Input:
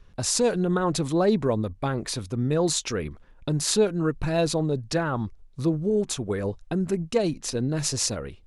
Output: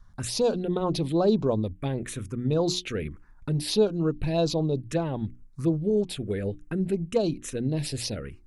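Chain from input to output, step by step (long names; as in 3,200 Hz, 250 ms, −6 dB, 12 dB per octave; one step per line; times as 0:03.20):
mains-hum notches 60/120/180/240/300/360 Hz
phaser swept by the level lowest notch 430 Hz, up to 2,000 Hz, full sweep at −19.5 dBFS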